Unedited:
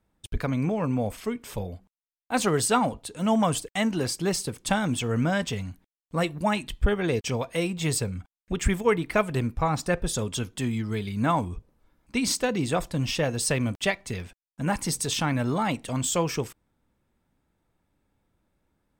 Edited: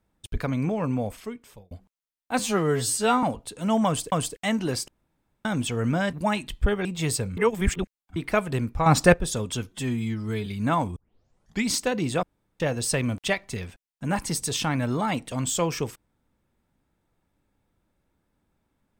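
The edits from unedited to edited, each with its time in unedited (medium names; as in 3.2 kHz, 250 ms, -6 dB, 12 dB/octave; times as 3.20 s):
0.93–1.71 s: fade out
2.39–2.81 s: stretch 2×
3.44–3.70 s: loop, 2 plays
4.20–4.77 s: room tone
5.45–6.33 s: delete
7.05–7.67 s: delete
8.19–8.98 s: reverse
9.68–9.96 s: gain +9 dB
10.53–11.03 s: stretch 1.5×
11.53 s: tape start 0.73 s
12.80–13.17 s: room tone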